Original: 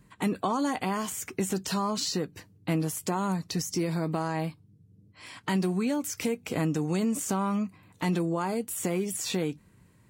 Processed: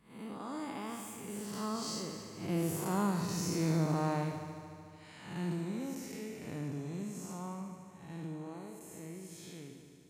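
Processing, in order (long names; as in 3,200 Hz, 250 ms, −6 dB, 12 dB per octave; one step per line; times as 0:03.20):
spectrum smeared in time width 211 ms
source passing by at 0:03.33, 28 m/s, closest 29 metres
echo machine with several playback heads 74 ms, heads first and third, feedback 68%, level −12.5 dB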